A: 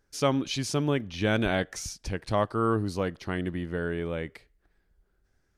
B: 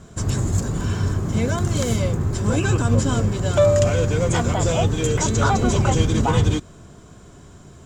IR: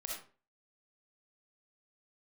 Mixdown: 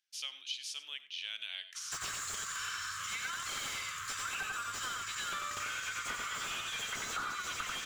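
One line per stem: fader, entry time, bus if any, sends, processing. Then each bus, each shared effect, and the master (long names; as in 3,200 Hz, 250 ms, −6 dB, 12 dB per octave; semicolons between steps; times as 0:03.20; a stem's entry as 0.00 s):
−9.0 dB, 0.00 s, send −13 dB, echo send −17 dB, high-pass with resonance 3,000 Hz, resonance Q 3.2
+3.0 dB, 1.75 s, no send, echo send −3 dB, elliptic high-pass filter 1,200 Hz, stop band 40 dB; slew-rate limiting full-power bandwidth 73 Hz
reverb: on, RT60 0.40 s, pre-delay 20 ms
echo: single-tap delay 92 ms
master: downward compressor, threshold −36 dBFS, peak gain reduction 13 dB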